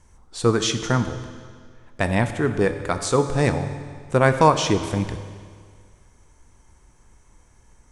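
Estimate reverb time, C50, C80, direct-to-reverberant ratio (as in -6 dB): 1.9 s, 9.5 dB, 10.5 dB, 8.0 dB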